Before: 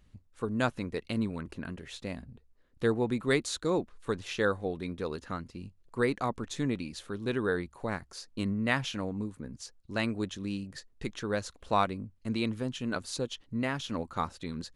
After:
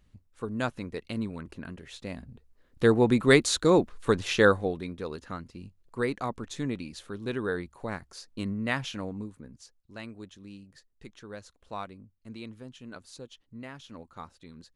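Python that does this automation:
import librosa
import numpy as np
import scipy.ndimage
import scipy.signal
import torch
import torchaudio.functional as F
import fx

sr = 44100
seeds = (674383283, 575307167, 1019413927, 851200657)

y = fx.gain(x, sr, db=fx.line((1.91, -1.5), (3.09, 8.0), (4.49, 8.0), (4.91, -1.0), (9.09, -1.0), (9.96, -11.0)))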